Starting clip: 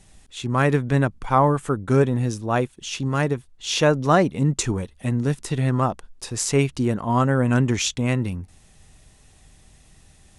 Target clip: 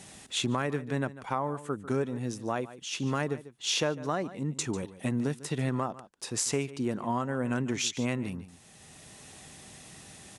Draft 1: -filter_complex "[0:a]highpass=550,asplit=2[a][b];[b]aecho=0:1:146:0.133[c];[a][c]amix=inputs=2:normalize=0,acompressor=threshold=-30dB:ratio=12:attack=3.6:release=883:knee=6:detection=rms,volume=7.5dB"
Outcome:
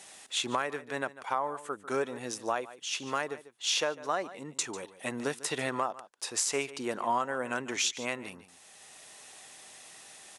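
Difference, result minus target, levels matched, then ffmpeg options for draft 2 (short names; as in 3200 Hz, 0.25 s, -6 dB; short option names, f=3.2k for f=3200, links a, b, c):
125 Hz band -14.5 dB
-filter_complex "[0:a]highpass=160,asplit=2[a][b];[b]aecho=0:1:146:0.133[c];[a][c]amix=inputs=2:normalize=0,acompressor=threshold=-30dB:ratio=12:attack=3.6:release=883:knee=6:detection=rms,volume=7.5dB"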